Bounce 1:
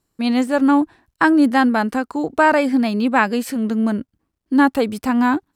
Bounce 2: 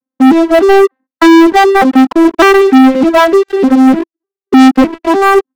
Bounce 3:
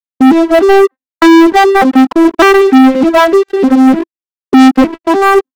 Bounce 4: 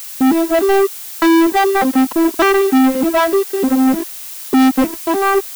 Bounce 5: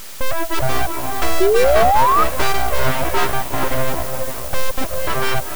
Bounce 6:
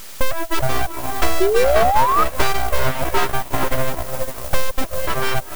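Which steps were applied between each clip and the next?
arpeggiated vocoder major triad, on C4, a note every 0.302 s; LPF 2000 Hz 12 dB/oct; sample leveller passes 5; gain +3 dB
gate -18 dBFS, range -33 dB
added noise blue -23 dBFS; gain -7 dB
diffused feedback echo 0.461 s, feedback 40%, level -6 dB; full-wave rectifier; painted sound rise, 1.4–2.24, 360–1300 Hz -12 dBFS; gain -2 dB
transient shaper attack +6 dB, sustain -7 dB; gain -2 dB

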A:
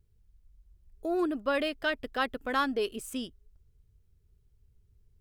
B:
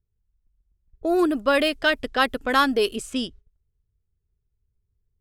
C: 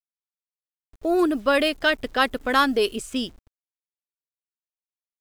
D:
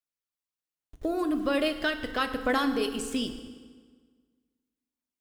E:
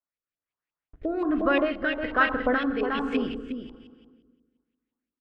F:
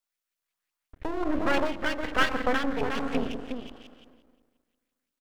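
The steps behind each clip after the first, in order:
low-pass opened by the level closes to 1700 Hz, open at -28 dBFS; gate -52 dBFS, range -18 dB; high shelf 4700 Hz +7.5 dB; gain +8.5 dB
bit-crush 9-bit
compressor 2.5:1, threshold -29 dBFS, peak gain reduction 10 dB; phaser 1.2 Hz, delay 1.1 ms, feedback 31%; FDN reverb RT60 1.6 s, low-frequency decay 1.1×, high-frequency decay 0.8×, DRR 7 dB
LFO low-pass saw up 5.7 Hz 850–2800 Hz; echo 0.361 s -6 dB; rotary speaker horn 1.2 Hz; gain +2.5 dB
half-wave rectifier; echo 0.148 s -23 dB; mismatched tape noise reduction encoder only; gain +2 dB

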